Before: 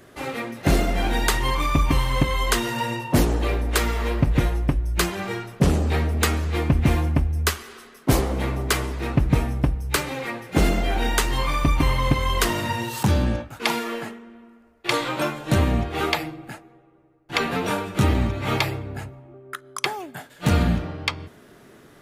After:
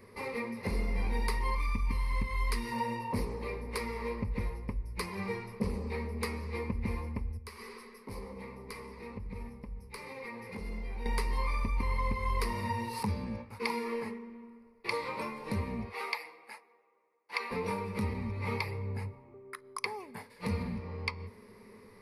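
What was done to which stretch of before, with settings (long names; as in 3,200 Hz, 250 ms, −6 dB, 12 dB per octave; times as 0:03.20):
0:01.55–0:02.72: parametric band 630 Hz −10 dB 1.3 octaves
0:04.30–0:06.14: linear-phase brick-wall low-pass 14,000 Hz
0:07.37–0:11.06: downward compressor 5 to 1, threshold −35 dBFS
0:15.89–0:17.51: high-pass filter 740 Hz
whole clip: high-shelf EQ 3,900 Hz −6 dB; downward compressor 2.5 to 1, threshold −30 dBFS; EQ curve with evenly spaced ripples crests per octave 0.89, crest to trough 16 dB; level −7.5 dB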